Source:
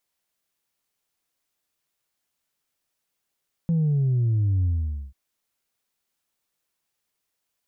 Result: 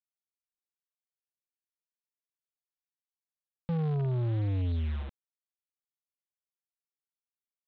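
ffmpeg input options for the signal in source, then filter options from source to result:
-f lavfi -i "aevalsrc='0.112*clip((1.44-t)/0.49,0,1)*tanh(1.12*sin(2*PI*170*1.44/log(65/170)*(exp(log(65/170)*t/1.44)-1)))/tanh(1.12)':d=1.44:s=44100"
-af "aemphasis=mode=production:type=75kf,aresample=8000,acrusher=bits=6:mix=0:aa=0.000001,aresample=44100,asoftclip=type=tanh:threshold=-27.5dB"

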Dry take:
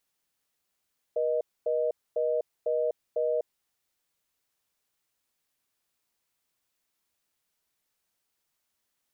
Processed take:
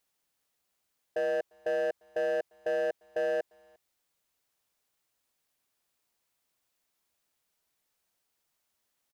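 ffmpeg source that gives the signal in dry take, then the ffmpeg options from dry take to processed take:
-f lavfi -i "aevalsrc='0.0447*(sin(2*PI*480*t)+sin(2*PI*620*t))*clip(min(mod(t,0.5),0.25-mod(t,0.5))/0.005,0,1)':d=2.43:s=44100"
-filter_complex "[0:a]equalizer=f=660:w=1.3:g=2.5,asoftclip=type=hard:threshold=-26.5dB,asplit=2[a][b];[b]adelay=350,highpass=300,lowpass=3.4k,asoftclip=type=hard:threshold=-36dB,volume=-23dB[c];[a][c]amix=inputs=2:normalize=0"

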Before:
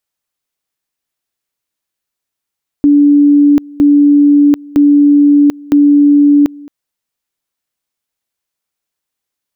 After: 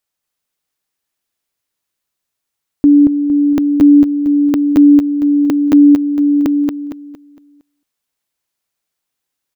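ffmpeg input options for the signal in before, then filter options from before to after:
-f lavfi -i "aevalsrc='pow(10,(-3.5-24.5*gte(mod(t,0.96),0.74))/20)*sin(2*PI*289*t)':d=3.84:s=44100"
-af "aecho=1:1:230|460|690|920|1150:0.668|0.241|0.0866|0.0312|0.0112"

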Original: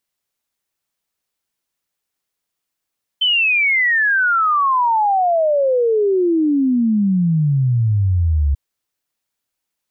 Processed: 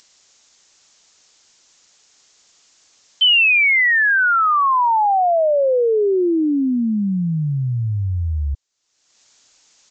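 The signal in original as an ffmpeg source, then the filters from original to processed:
-f lavfi -i "aevalsrc='0.237*clip(min(t,5.34-t)/0.01,0,1)*sin(2*PI*3100*5.34/log(68/3100)*(exp(log(68/3100)*t/5.34)-1))':d=5.34:s=44100"
-af "bass=f=250:g=-5,treble=f=4k:g=12,acompressor=mode=upward:threshold=-29dB:ratio=2.5,aresample=16000,aresample=44100"

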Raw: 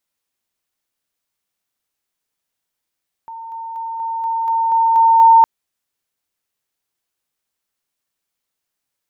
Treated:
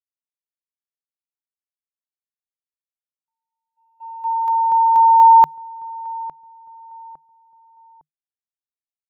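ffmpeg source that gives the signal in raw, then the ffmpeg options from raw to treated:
-f lavfi -i "aevalsrc='pow(10,(-29+3*floor(t/0.24))/20)*sin(2*PI*909*t)':d=2.16:s=44100"
-filter_complex "[0:a]agate=range=-56dB:threshold=-22dB:ratio=16:detection=peak,equalizer=f=150:w=6:g=9.5,asplit=2[a][b];[b]adelay=857,lowpass=f=990:p=1,volume=-17.5dB,asplit=2[c][d];[d]adelay=857,lowpass=f=990:p=1,volume=0.42,asplit=2[e][f];[f]adelay=857,lowpass=f=990:p=1,volume=0.42[g];[a][c][e][g]amix=inputs=4:normalize=0"

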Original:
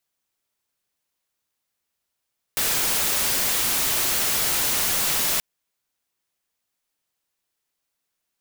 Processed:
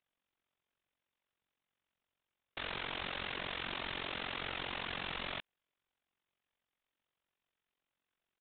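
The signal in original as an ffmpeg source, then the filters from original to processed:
-f lavfi -i "anoisesrc=c=white:a=0.13:d=2.83:r=44100:seed=1"
-af "aresample=8000,asoftclip=type=tanh:threshold=-35dB,aresample=44100,tremolo=f=45:d=0.889"

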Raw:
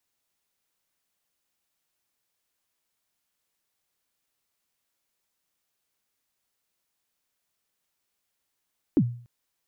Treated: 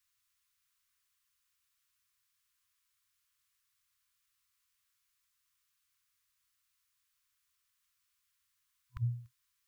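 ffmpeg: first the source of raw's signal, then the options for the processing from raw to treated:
-f lavfi -i "aevalsrc='0.211*pow(10,-3*t/0.47)*sin(2*PI*(350*0.059/log(120/350)*(exp(log(120/350)*min(t,0.059)/0.059)-1)+120*max(t-0.059,0)))':d=0.29:s=44100"
-af "afftfilt=real='re*(1-between(b*sr/4096,120,1000))':imag='im*(1-between(b*sr/4096,120,1000))':win_size=4096:overlap=0.75"

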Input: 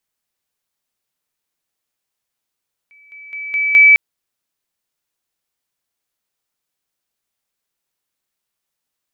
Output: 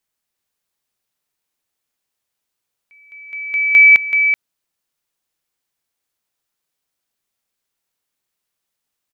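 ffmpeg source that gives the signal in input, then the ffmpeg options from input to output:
-f lavfi -i "aevalsrc='pow(10,(-44.5+10*floor(t/0.21))/20)*sin(2*PI*2300*t)':d=1.05:s=44100"
-af "aecho=1:1:380:0.473"

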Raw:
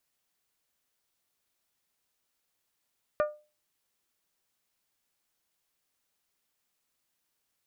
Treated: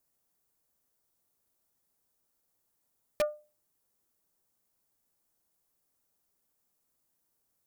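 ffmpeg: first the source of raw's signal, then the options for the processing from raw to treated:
-f lavfi -i "aevalsrc='0.0944*pow(10,-3*t/0.32)*sin(2*PI*600*t)+0.0473*pow(10,-3*t/0.197)*sin(2*PI*1200*t)+0.0237*pow(10,-3*t/0.173)*sin(2*PI*1440*t)+0.0119*pow(10,-3*t/0.148)*sin(2*PI*1800*t)+0.00596*pow(10,-3*t/0.121)*sin(2*PI*2400*t)':d=0.89:s=44100"
-filter_complex "[0:a]equalizer=f=2.8k:w=0.57:g=-13,asplit=2[a][b];[b]aeval=exprs='(mod(16.8*val(0)+1,2)-1)/16.8':c=same,volume=-4.5dB[c];[a][c]amix=inputs=2:normalize=0"

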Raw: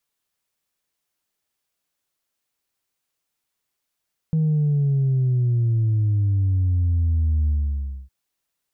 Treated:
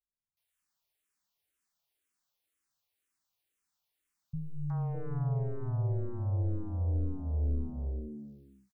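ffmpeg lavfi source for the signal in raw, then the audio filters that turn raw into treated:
-f lavfi -i "aevalsrc='0.141*clip((3.76-t)/0.61,0,1)*tanh(1.06*sin(2*PI*160*3.76/log(65/160)*(exp(log(65/160)*t/3.76)-1)))/tanh(1.06)':d=3.76:s=44100"
-filter_complex "[0:a]aeval=exprs='(tanh(22.4*val(0)+0.45)-tanh(0.45))/22.4':c=same,acrossover=split=170|530[a][b][c];[c]adelay=370[d];[b]adelay=610[e];[a][e][d]amix=inputs=3:normalize=0,asplit=2[f][g];[g]afreqshift=-2[h];[f][h]amix=inputs=2:normalize=1"

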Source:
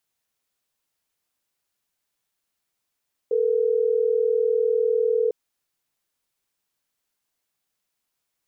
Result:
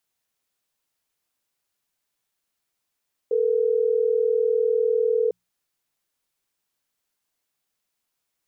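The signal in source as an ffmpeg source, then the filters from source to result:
-f lavfi -i "aevalsrc='0.0891*(sin(2*PI*440*t)+sin(2*PI*480*t))*clip(min(mod(t,6),2-mod(t,6))/0.005,0,1)':d=3.12:s=44100"
-af "bandreject=f=60:t=h:w=6,bandreject=f=120:t=h:w=6,bandreject=f=180:t=h:w=6"

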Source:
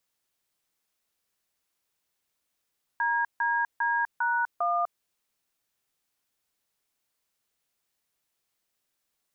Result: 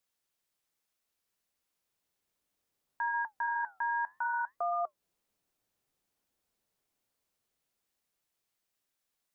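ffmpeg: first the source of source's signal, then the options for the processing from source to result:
-f lavfi -i "aevalsrc='0.0501*clip(min(mod(t,0.401),0.249-mod(t,0.401))/0.002,0,1)*(eq(floor(t/0.401),0)*(sin(2*PI*941*mod(t,0.401))+sin(2*PI*1633*mod(t,0.401)))+eq(floor(t/0.401),1)*(sin(2*PI*941*mod(t,0.401))+sin(2*PI*1633*mod(t,0.401)))+eq(floor(t/0.401),2)*(sin(2*PI*941*mod(t,0.401))+sin(2*PI*1633*mod(t,0.401)))+eq(floor(t/0.401),3)*(sin(2*PI*941*mod(t,0.401))+sin(2*PI*1477*mod(t,0.401)))+eq(floor(t/0.401),4)*(sin(2*PI*697*mod(t,0.401))+sin(2*PI*1209*mod(t,0.401))))':d=2.005:s=44100"
-filter_complex "[0:a]flanger=delay=3.6:depth=7.4:regen=-77:speed=0.63:shape=sinusoidal,acrossover=split=820[a][b];[a]dynaudnorm=f=410:g=11:m=8dB[c];[c][b]amix=inputs=2:normalize=0,alimiter=level_in=1.5dB:limit=-24dB:level=0:latency=1:release=196,volume=-1.5dB"

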